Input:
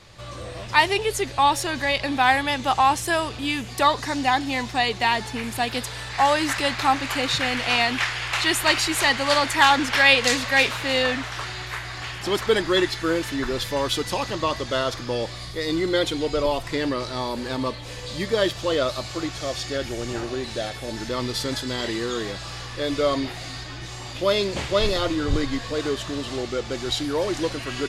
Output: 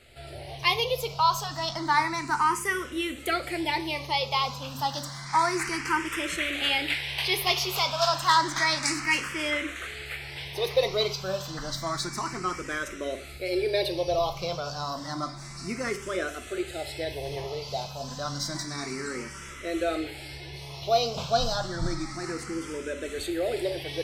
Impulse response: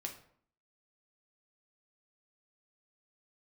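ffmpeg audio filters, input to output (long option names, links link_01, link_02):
-filter_complex "[0:a]asetrate=51156,aresample=44100,asplit=2[link_01][link_02];[1:a]atrim=start_sample=2205,atrim=end_sample=6174[link_03];[link_02][link_03]afir=irnorm=-1:irlink=0,volume=3.5dB[link_04];[link_01][link_04]amix=inputs=2:normalize=0,asplit=2[link_05][link_06];[link_06]afreqshift=0.3[link_07];[link_05][link_07]amix=inputs=2:normalize=1,volume=-9dB"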